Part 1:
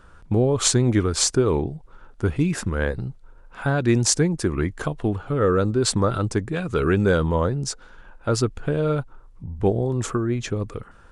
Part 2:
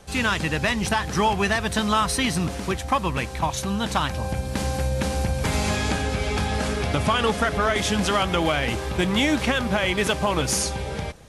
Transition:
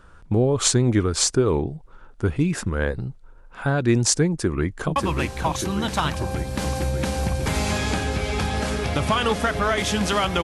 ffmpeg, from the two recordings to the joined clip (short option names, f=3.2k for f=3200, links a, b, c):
-filter_complex "[0:a]apad=whole_dur=10.43,atrim=end=10.43,atrim=end=4.962[a];[1:a]atrim=start=2.938:end=8.41[b];[a][b]acrossfade=d=0.004:c1=hsin:c2=hsin,asplit=2[c][d];[d]afade=t=in:st=4.28:d=0.01,afade=t=out:st=4.96:d=0.01,aecho=0:1:590|1180|1770|2360|2950|3540|4130|4720|5310|5900|6490|7080:0.562341|0.421756|0.316317|0.237238|0.177928|0.133446|0.100085|0.0750635|0.0562976|0.0422232|0.0316674|0.0237506[e];[c][e]amix=inputs=2:normalize=0"